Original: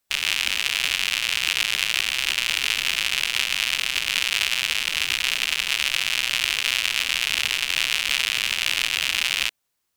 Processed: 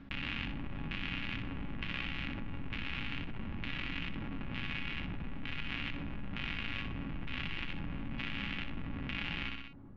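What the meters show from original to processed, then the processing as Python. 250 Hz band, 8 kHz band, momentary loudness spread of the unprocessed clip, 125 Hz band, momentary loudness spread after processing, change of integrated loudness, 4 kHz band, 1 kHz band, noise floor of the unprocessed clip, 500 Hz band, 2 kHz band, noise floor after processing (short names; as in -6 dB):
+9.0 dB, under -40 dB, 1 LU, +8.5 dB, 4 LU, -18.5 dB, -23.0 dB, -12.0 dB, -76 dBFS, -7.5 dB, -17.5 dB, -43 dBFS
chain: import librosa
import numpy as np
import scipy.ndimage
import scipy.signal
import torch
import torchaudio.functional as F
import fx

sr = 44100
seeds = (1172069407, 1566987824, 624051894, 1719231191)

y = scipy.ndimage.median_filter(x, 5, mode='constant')
y = fx.low_shelf_res(y, sr, hz=340.0, db=14.0, q=1.5)
y = fx.comb_fb(y, sr, f0_hz=280.0, decay_s=0.17, harmonics='all', damping=0.0, mix_pct=70)
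y = fx.filter_lfo_lowpass(y, sr, shape='square', hz=1.1, low_hz=830.0, high_hz=2600.0, q=0.73)
y = fx.spacing_loss(y, sr, db_at_10k=24)
y = fx.echo_feedback(y, sr, ms=62, feedback_pct=29, wet_db=-8)
y = fx.env_flatten(y, sr, amount_pct=70)
y = y * librosa.db_to_amplitude(-3.5)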